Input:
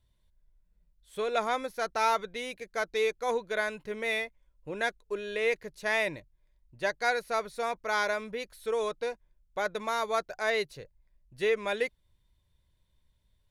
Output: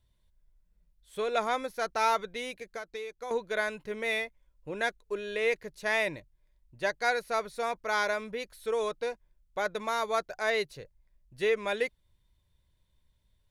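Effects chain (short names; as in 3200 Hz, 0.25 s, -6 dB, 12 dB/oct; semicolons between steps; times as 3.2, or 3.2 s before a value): 2.5–3.31 compressor 12:1, threshold -36 dBFS, peak gain reduction 13 dB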